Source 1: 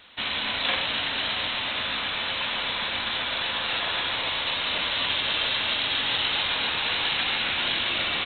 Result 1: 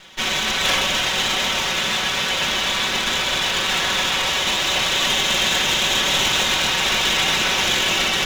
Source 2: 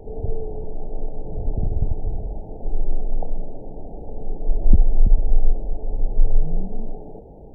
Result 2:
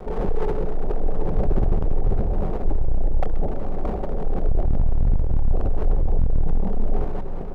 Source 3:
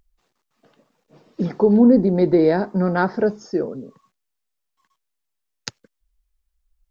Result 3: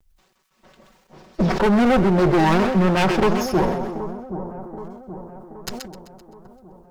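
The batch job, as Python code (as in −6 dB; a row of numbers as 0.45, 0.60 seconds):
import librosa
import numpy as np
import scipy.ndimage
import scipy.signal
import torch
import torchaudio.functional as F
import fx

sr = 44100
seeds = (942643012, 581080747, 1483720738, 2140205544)

y = fx.lower_of_two(x, sr, delay_ms=5.3)
y = fx.dynamic_eq(y, sr, hz=170.0, q=0.86, threshold_db=-33.0, ratio=4.0, max_db=-3)
y = np.clip(10.0 ** (21.0 / 20.0) * y, -1.0, 1.0) / 10.0 ** (21.0 / 20.0)
y = fx.echo_split(y, sr, split_hz=1100.0, low_ms=776, high_ms=129, feedback_pct=52, wet_db=-11.5)
y = fx.sustainer(y, sr, db_per_s=49.0)
y = librosa.util.normalize(y) * 10.0 ** (-9 / 20.0)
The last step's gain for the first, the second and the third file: +8.5, +6.5, +7.0 decibels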